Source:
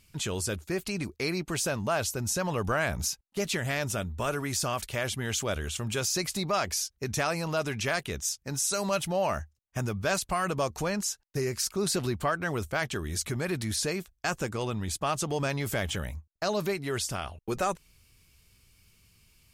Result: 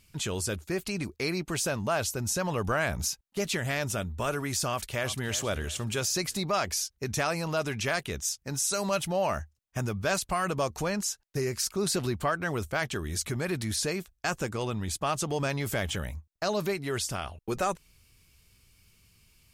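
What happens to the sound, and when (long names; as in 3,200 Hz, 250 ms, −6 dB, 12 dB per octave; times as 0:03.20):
0:04.68–0:05.31: delay throw 350 ms, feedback 35%, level −13 dB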